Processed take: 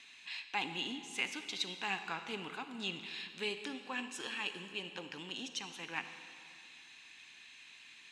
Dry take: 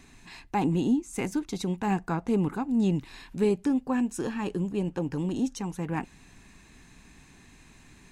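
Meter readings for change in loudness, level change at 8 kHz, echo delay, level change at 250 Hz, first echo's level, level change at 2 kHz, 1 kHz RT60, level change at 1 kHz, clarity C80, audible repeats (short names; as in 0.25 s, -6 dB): -11.0 dB, -5.0 dB, none, -21.0 dB, none, +2.0 dB, 2.4 s, -9.0 dB, 10.0 dB, none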